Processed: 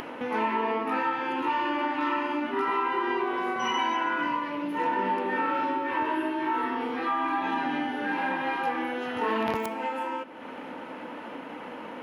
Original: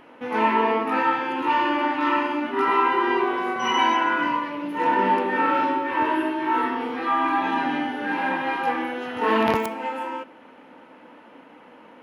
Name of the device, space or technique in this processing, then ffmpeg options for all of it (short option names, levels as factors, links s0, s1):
upward and downward compression: -af "acompressor=mode=upward:threshold=0.0501:ratio=2.5,acompressor=threshold=0.0708:ratio=3,volume=0.794"